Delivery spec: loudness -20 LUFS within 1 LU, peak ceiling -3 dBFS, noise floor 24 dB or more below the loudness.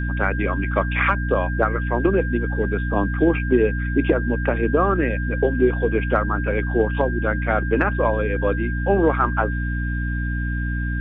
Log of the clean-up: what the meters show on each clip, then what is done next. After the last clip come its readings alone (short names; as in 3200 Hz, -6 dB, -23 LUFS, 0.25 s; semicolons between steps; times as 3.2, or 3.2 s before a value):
hum 60 Hz; harmonics up to 300 Hz; hum level -22 dBFS; steady tone 1600 Hz; tone level -30 dBFS; loudness -21.5 LUFS; peak -4.5 dBFS; loudness target -20.0 LUFS
-> notches 60/120/180/240/300 Hz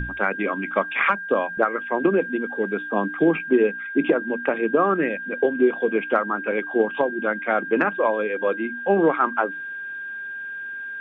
hum none; steady tone 1600 Hz; tone level -30 dBFS
-> notch 1600 Hz, Q 30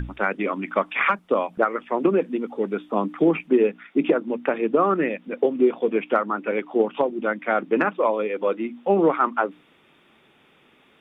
steady tone none; loudness -23.0 LUFS; peak -6.5 dBFS; loudness target -20.0 LUFS
-> gain +3 dB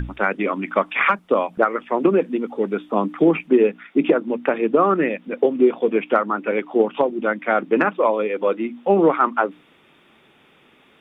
loudness -20.0 LUFS; peak -3.5 dBFS; noise floor -55 dBFS